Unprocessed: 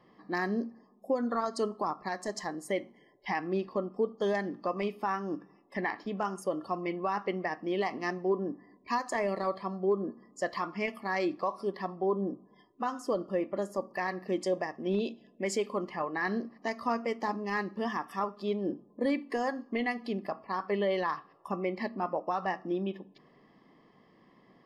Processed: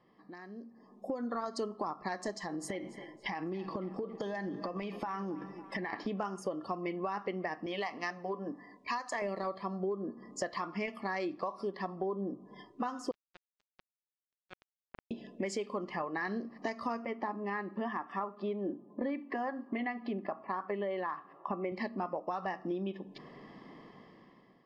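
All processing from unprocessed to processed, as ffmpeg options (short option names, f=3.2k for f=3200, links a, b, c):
-filter_complex "[0:a]asettb=1/sr,asplit=3[a][b][c];[a]atrim=end=2.324[d];[b]atrim=start=2.32:end=5.93,asetpts=PTS-STARTPTS,afade=t=in:d=0.004:c=qsin,afade=t=out:st=3.606:d=0.004:c=qsin,aecho=1:1:6.1:0.38,atrim=end_sample=159201,acompressor=threshold=-39dB:ratio=6:attack=3.2:release=140:knee=1:detection=peak,asplit=2[e][f];[f]adelay=277,lowpass=f=4.8k:p=1,volume=-17dB,asplit=2[g][h];[h]adelay=277,lowpass=f=4.8k:p=1,volume=0.5,asplit=2[i][j];[j]adelay=277,lowpass=f=4.8k:p=1,volume=0.5,asplit=2[k][l];[l]adelay=277,lowpass=f=4.8k:p=1,volume=0.5[m];[e][g][i][k][m]amix=inputs=5:normalize=0,atrim=end_sample=159201[n];[c]atrim=start=5.926[o];[d][n]acrossfade=d=0.004:c1=hsin:c2=qsin[p];[p][o]acrossfade=d=0.004:c1=qsin:c2=hsin,asettb=1/sr,asplit=3[q][r][s];[q]atrim=end=7.664[t];[r]atrim=start=7.66:end=9.22,asetpts=PTS-STARTPTS,afade=t=in:d=0.004:c=qsin,afade=t=out:st=1.556:d=0.004:c=qsin,lowshelf=f=480:g=-10.5,bandreject=f=370:w=7.2[u];[s]atrim=start=9.216[v];[t][u]acrossfade=d=0.004:c1=hsin:c2=qsin[w];[w][v]acrossfade=d=0.004:c1=qsin:c2=hsin,asettb=1/sr,asplit=3[x][y][z];[x]atrim=end=13.114[aa];[y]atrim=start=13.11:end=15.11,asetpts=PTS-STARTPTS,afade=t=in:d=0.004:c=qsin,afade=t=out:st=1.996:d=0.004:c=qsin,lowpass=f=1.5k:w=0.5412,lowpass=f=1.5k:w=1.3066,acrusher=bits=2:mix=0:aa=0.5[ab];[z]atrim=start=15.106[ac];[aa][ab]acrossfade=d=0.004:c1=hsin:c2=qsin[ad];[ad][ac]acrossfade=d=0.004:c1=qsin:c2=hsin,asettb=1/sr,asplit=3[ae][af][ag];[ae]atrim=end=17.054[ah];[af]atrim=start=17.05:end=21.72,asetpts=PTS-STARTPTS,afade=t=in:d=0.004:c=qsin,afade=t=out:st=4.666:d=0.004:c=qsin,highpass=190,lowpass=2.2k,bandreject=f=470:w=6.9[ai];[ag]atrim=start=21.716[aj];[ah][ai]acrossfade=d=0.004:c1=hsin:c2=qsin[ak];[ak][aj]acrossfade=d=0.004:c1=qsin:c2=hsin,acompressor=threshold=-44dB:ratio=5,lowpass=7k,dynaudnorm=f=250:g=7:m=15.5dB,volume=-6dB"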